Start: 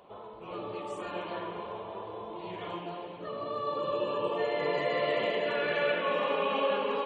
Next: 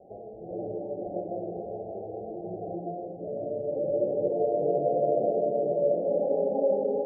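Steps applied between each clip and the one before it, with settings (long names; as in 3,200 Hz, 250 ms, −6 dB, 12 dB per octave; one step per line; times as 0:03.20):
Chebyshev low-pass filter 800 Hz, order 10
level +5.5 dB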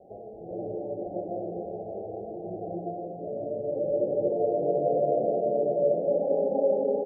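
single-tap delay 246 ms −9.5 dB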